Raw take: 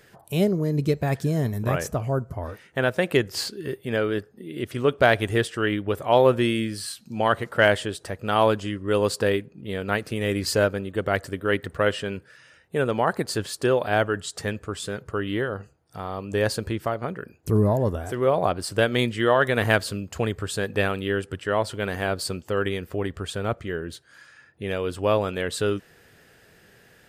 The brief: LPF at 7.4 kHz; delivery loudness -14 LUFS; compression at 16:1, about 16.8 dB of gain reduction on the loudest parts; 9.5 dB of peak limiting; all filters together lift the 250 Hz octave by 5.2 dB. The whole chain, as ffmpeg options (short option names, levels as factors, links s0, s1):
-af "lowpass=7400,equalizer=f=250:t=o:g=7,acompressor=threshold=0.0398:ratio=16,volume=14.1,alimiter=limit=0.708:level=0:latency=1"